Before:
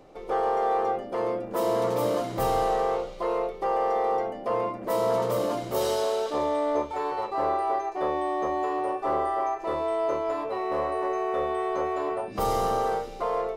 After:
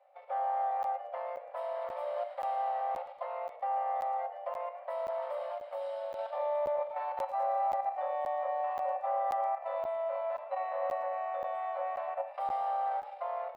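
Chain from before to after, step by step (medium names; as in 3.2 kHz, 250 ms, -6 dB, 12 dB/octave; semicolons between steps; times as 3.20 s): level held to a coarse grid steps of 10 dB; boxcar filter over 7 samples; tilt shelf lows +6 dB, about 930 Hz; 7.19–7.63 s: crackle 39 per s -48 dBFS; rippled Chebyshev high-pass 540 Hz, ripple 6 dB; Schroeder reverb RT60 0.74 s, combs from 29 ms, DRR 12.5 dB; 5.47–6.19 s: compression, threshold -35 dBFS, peak gain reduction 6 dB; crackling interface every 0.53 s, samples 512, zero, from 0.83 s; modulated delay 115 ms, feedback 52%, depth 147 cents, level -17.5 dB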